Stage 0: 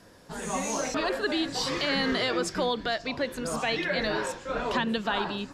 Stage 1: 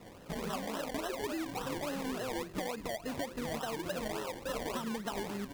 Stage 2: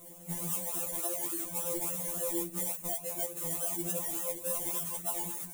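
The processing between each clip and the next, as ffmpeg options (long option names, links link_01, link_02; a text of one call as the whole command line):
ffmpeg -i in.wav -af "lowpass=frequency=1200:width=0.5412,lowpass=frequency=1200:width=1.3066,acompressor=threshold=-38dB:ratio=6,acrusher=samples=27:mix=1:aa=0.000001:lfo=1:lforange=16.2:lforate=3.5,volume=3dB" out.wav
ffmpeg -i in.wav -af "equalizer=frequency=250:width_type=o:width=0.67:gain=4,equalizer=frequency=1600:width_type=o:width=0.67:gain=-7,equalizer=frequency=16000:width_type=o:width=0.67:gain=-4,aexciter=amount=14.7:drive=3.3:freq=7000,afftfilt=real='re*2.83*eq(mod(b,8),0)':imag='im*2.83*eq(mod(b,8),0)':win_size=2048:overlap=0.75,volume=-1.5dB" out.wav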